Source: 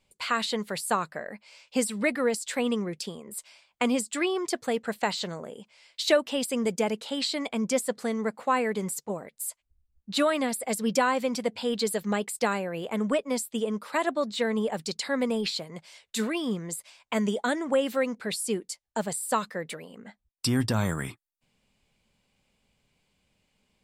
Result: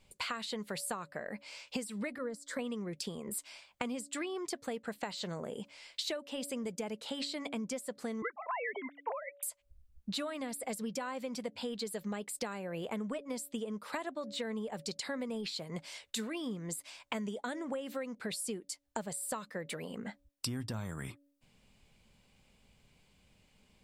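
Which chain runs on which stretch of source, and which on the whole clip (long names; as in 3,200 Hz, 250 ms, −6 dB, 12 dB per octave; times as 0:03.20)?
0:02.18–0:02.59: low-pass filter 3,500 Hz 6 dB per octave + phaser with its sweep stopped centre 530 Hz, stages 8
0:08.22–0:09.43: three sine waves on the formant tracks + volume swells 184 ms + flat-topped bell 1,300 Hz +15 dB 2.4 octaves
whole clip: low-shelf EQ 140 Hz +5 dB; hum removal 283.9 Hz, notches 2; downward compressor 12 to 1, threshold −39 dBFS; level +3.5 dB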